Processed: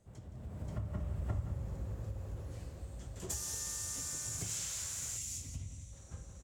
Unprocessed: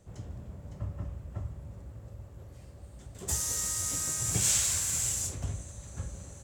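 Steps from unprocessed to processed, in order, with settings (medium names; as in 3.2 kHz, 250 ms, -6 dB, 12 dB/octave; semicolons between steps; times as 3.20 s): Doppler pass-by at 1.40 s, 16 m/s, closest 2.5 m; echo from a far wall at 29 m, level -9 dB; compression 4:1, threshold -58 dBFS, peak gain reduction 21.5 dB; time-frequency box 5.17–5.93 s, 320–1900 Hz -10 dB; level rider gain up to 9.5 dB; trim +11 dB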